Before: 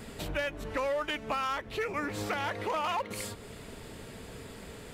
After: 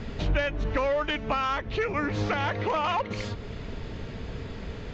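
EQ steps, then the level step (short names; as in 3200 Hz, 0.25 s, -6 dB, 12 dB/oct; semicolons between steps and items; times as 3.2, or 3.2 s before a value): elliptic low-pass 6600 Hz, stop band 40 dB; air absorption 83 m; low shelf 130 Hz +11.5 dB; +5.5 dB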